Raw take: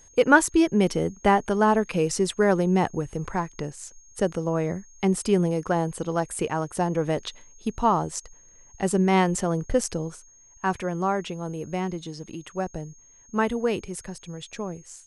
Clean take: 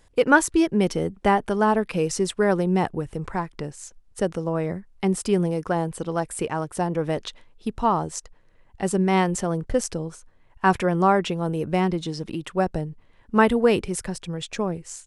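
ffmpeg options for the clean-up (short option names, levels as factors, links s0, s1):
-af "bandreject=f=6500:w=30,asetnsamples=n=441:p=0,asendcmd='10.22 volume volume 6.5dB',volume=1"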